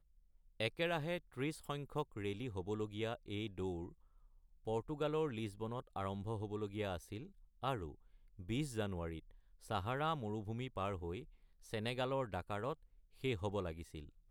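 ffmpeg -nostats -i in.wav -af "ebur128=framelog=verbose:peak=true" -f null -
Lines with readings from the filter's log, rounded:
Integrated loudness:
  I:         -42.1 LUFS
  Threshold: -52.5 LUFS
Loudness range:
  LRA:         2.3 LU
  Threshold: -62.8 LUFS
  LRA low:   -44.1 LUFS
  LRA high:  -41.8 LUFS
True peak:
  Peak:      -21.8 dBFS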